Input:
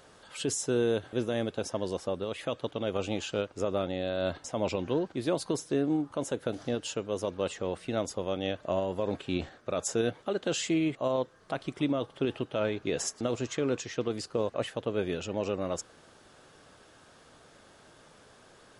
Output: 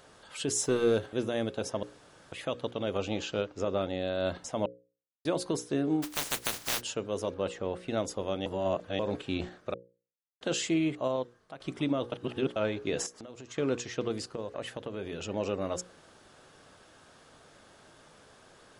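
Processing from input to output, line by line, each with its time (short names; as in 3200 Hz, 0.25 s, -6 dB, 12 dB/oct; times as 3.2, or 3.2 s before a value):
0.55–1.06 sample leveller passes 1
1.83–2.32 room tone
2.98–3.82 LPF 7000 Hz 24 dB/oct
4.66–5.25 mute
6.02–6.8 spectral contrast lowered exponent 0.13
7.34–7.88 high shelf 3800 Hz -8 dB
8.46–8.99 reverse
9.74–10.41 mute
10.98–11.6 fade out, to -15 dB
12.12–12.56 reverse
13.06–13.58 compressor 8:1, threshold -41 dBFS
14.18–15.28 compressor 3:1, threshold -33 dBFS
whole clip: notches 60/120/180/240/300/360/420/480/540 Hz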